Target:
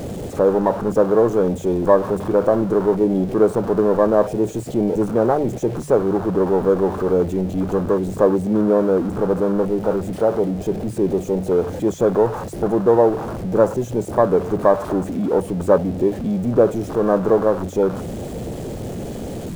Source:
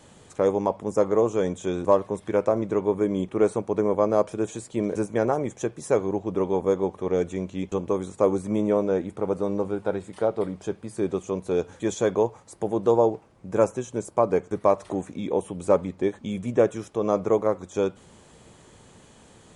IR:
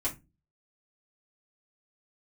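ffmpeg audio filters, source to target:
-af "aeval=exprs='val(0)+0.5*0.0668*sgn(val(0))':channel_layout=same,afwtdn=0.0447,bandreject=frequency=50:width_type=h:width=6,bandreject=frequency=100:width_type=h:width=6,bandreject=frequency=150:width_type=h:width=6,volume=4dB"

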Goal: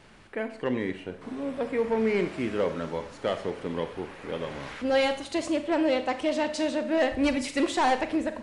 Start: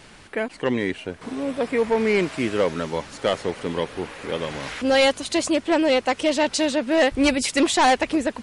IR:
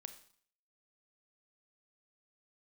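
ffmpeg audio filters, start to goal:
-filter_complex "[0:a]highshelf=frequency=3200:gain=-8.5[link_01];[1:a]atrim=start_sample=2205[link_02];[link_01][link_02]afir=irnorm=-1:irlink=0"

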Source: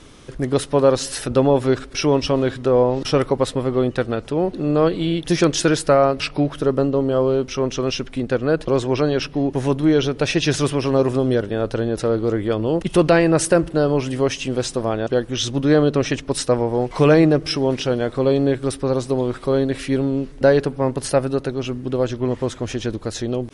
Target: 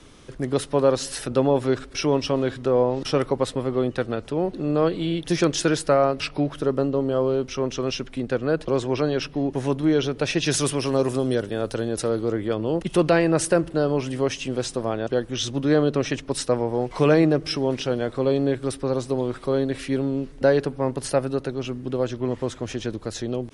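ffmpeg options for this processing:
ffmpeg -i in.wav -filter_complex "[0:a]asettb=1/sr,asplit=3[link_01][link_02][link_03];[link_01]atrim=end=10.464[link_04];[link_02]atrim=start=10.46:end=12.24,asetpts=PTS-STARTPTS,afade=type=in:duration=0.004:curve=qsin,afade=type=out:start_time=1.776:duration=0.004:curve=qsin,aemphasis=mode=production:type=50fm[link_05];[link_03]atrim=start=12.236[link_06];[link_04][link_05]acrossfade=duration=0.004:curve1=hsin:curve2=qsin[link_07];[link_07][link_06]acrossfade=duration=0.004:curve1=qsin:curve2=hsin,acrossover=split=110|880|2300[link_08][link_09][link_10][link_11];[link_08]alimiter=level_in=10.5dB:limit=-24dB:level=0:latency=1,volume=-10.5dB[link_12];[link_12][link_09][link_10][link_11]amix=inputs=4:normalize=0,volume=-4dB" out.wav

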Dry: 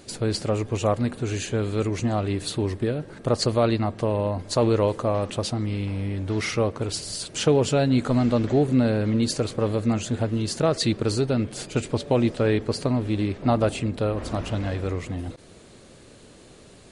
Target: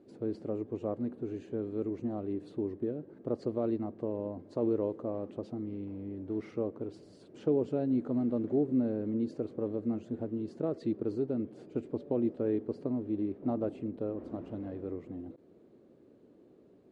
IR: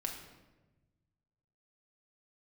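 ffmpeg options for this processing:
-af "bandpass=frequency=320:width_type=q:width=1.7:csg=0,volume=-5.5dB"

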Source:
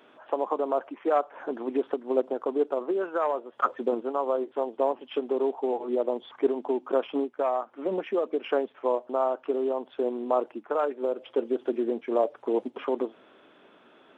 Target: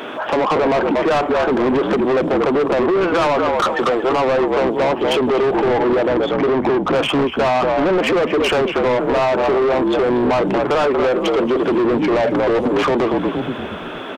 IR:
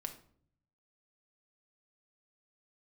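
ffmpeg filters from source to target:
-filter_complex "[0:a]asettb=1/sr,asplit=3[link_01][link_02][link_03];[link_01]atrim=end=3.214[link_04];[link_02]atrim=start=3.21:end=4.12,asetpts=PTS-STARTPTS,afade=type=in:duration=0.004:curve=qsin,afade=type=out:start_time=0.906:duration=0.004:curve=qsin,highpass=510[link_05];[link_03]atrim=start=4.116[link_06];[link_04][link_05]acrossfade=duration=0.004:curve1=hsin:curve2=qsin[link_07];[link_07][link_06]acrossfade=duration=0.004:curve1=qsin:curve2=hsin,asettb=1/sr,asplit=3[link_08][link_09][link_10];[link_08]atrim=end=6.074[link_11];[link_09]atrim=start=6.07:end=6.96,asetpts=PTS-STARTPTS,afade=type=in:duration=0.004:curve=qsin,afade=type=out:start_time=0.886:duration=0.004:curve=qsin,highshelf=frequency=2200:gain=-10[link_12];[link_10]atrim=start=6.956[link_13];[link_11][link_12]acrossfade=duration=0.004:curve1=hsin:curve2=qsin[link_14];[link_14][link_13]acrossfade=duration=0.004:curve1=qsin:curve2=hsin,asplit=5[link_15][link_16][link_17][link_18][link_19];[link_16]adelay=234,afreqshift=-55,volume=-12dB[link_20];[link_17]adelay=468,afreqshift=-110,volume=-21.1dB[link_21];[link_18]adelay=702,afreqshift=-165,volume=-30.2dB[link_22];[link_19]adelay=936,afreqshift=-220,volume=-39.4dB[link_23];[link_15][link_20][link_21][link_22][link_23]amix=inputs=5:normalize=0,apsyclip=27.5dB,acompressor=threshold=-7dB:ratio=4,asoftclip=type=tanh:threshold=-13.5dB"

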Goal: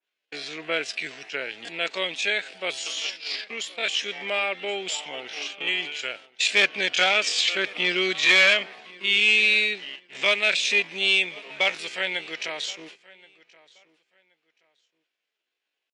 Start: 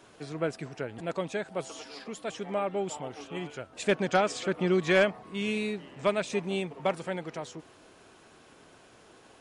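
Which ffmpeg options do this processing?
ffmpeg -i in.wav -filter_complex "[0:a]agate=range=-38dB:threshold=-44dB:ratio=16:detection=peak,highshelf=frequency=1600:width_type=q:width=1.5:gain=12,asplit=2[link_01][link_02];[link_02]acompressor=threshold=-40dB:ratio=4,volume=-0.5dB[link_03];[link_01][link_03]amix=inputs=2:normalize=0,volume=14.5dB,asoftclip=hard,volume=-14.5dB,atempo=0.59,highpass=400,lowpass=4200,aecho=1:1:1076|2152:0.0794|0.0183,adynamicequalizer=threshold=0.0141:dfrequency=2200:dqfactor=0.7:tfrequency=2200:tqfactor=0.7:attack=5:release=100:ratio=0.375:range=3:mode=boostabove:tftype=highshelf" out.wav

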